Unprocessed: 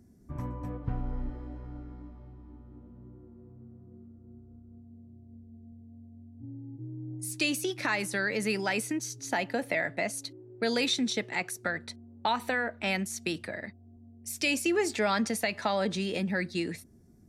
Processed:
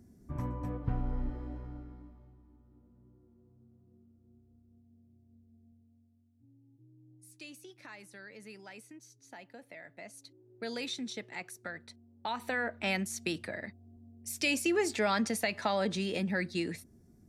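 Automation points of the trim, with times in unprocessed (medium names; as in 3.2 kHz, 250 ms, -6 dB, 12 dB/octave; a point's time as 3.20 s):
1.55 s 0 dB
2.52 s -12 dB
5.67 s -12 dB
6.24 s -20 dB
9.79 s -20 dB
10.56 s -10 dB
12.17 s -10 dB
12.65 s -2 dB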